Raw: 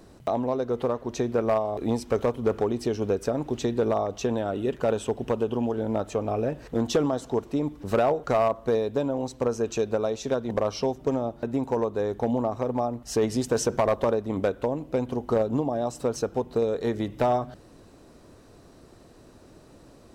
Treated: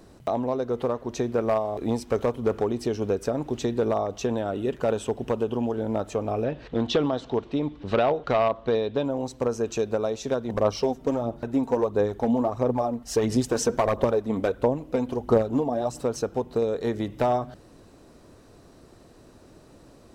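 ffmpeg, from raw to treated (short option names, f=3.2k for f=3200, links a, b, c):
-filter_complex "[0:a]asettb=1/sr,asplit=3[a][b][c];[a]atrim=end=1.224[d];[b]atrim=start=1.22:end=2.2,asetpts=PTS-STARTPTS,afade=t=in:d=0.004:c=qsin,afade=t=out:st=0.976:d=0.004:c=qsin,aeval=exprs='sgn(val(0))*max(abs(val(0))-0.001,0)':c=same[e];[c]atrim=start=2.196[f];[d][e]acrossfade=d=0.004:c1=hsin:c2=qsin[g];[g][f]acrossfade=d=0.004:c1=qsin:c2=hsin,asettb=1/sr,asplit=3[h][i][j];[h]atrim=end=6.444[k];[i]atrim=start=6.44:end=9.05,asetpts=PTS-STARTPTS,afade=t=in:d=0.004:c=qsin,afade=t=out:st=2.606:d=0.004:c=qsin,lowpass=f=3.6k:t=q:w=2[l];[j]atrim=start=9.046[m];[k][l]acrossfade=d=0.004:c1=hsin:c2=qsin[n];[n][m]acrossfade=d=0.004:c1=qsin:c2=hsin,asplit=3[o][p][q];[o]afade=t=out:st=10.52:d=0.02[r];[p]aphaser=in_gain=1:out_gain=1:delay=4.5:decay=0.44:speed=1.5:type=sinusoidal,afade=t=in:st=10.52:d=0.02,afade=t=out:st=15.99:d=0.02[s];[q]afade=t=in:st=15.99:d=0.02[t];[r][s][t]amix=inputs=3:normalize=0"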